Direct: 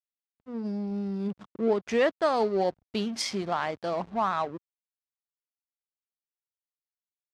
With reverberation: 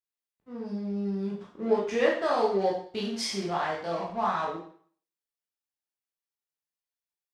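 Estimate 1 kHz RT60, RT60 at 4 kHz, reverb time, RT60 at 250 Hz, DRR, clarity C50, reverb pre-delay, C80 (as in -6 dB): 0.50 s, 0.50 s, 0.50 s, 0.45 s, -4.5 dB, 4.0 dB, 12 ms, 8.5 dB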